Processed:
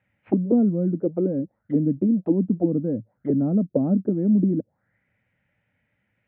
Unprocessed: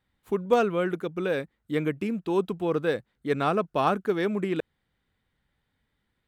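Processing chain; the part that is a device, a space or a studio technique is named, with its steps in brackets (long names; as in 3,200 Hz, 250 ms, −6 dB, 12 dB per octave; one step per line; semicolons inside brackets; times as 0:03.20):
parametric band 4,300 Hz +3.5 dB 1 octave
envelope filter bass rig (envelope-controlled low-pass 260–2,600 Hz down, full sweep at −24 dBFS; loudspeaker in its box 87–2,300 Hz, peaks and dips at 110 Hz +9 dB, 190 Hz +4 dB, 400 Hz −6 dB, 580 Hz +9 dB, 1,100 Hz −8 dB)
level +2 dB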